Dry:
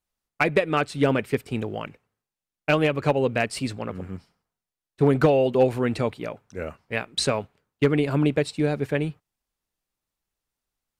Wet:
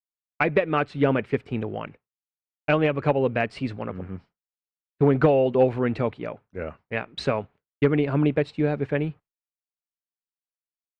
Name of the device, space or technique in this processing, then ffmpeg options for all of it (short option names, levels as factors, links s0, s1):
hearing-loss simulation: -af "lowpass=2600,agate=range=0.0224:threshold=0.00891:ratio=3:detection=peak"